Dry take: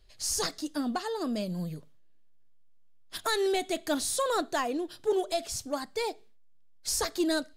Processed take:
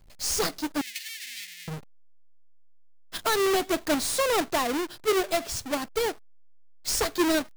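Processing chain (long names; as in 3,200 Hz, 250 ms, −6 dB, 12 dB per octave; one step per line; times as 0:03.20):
each half-wave held at its own peak
0:00.81–0:01.68: elliptic high-pass filter 1,900 Hz, stop band 40 dB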